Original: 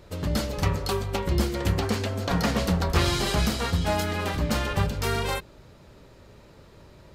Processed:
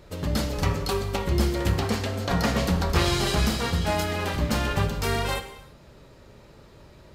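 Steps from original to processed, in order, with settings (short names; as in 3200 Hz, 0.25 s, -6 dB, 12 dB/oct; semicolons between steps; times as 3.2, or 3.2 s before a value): non-linear reverb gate 0.36 s falling, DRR 7.5 dB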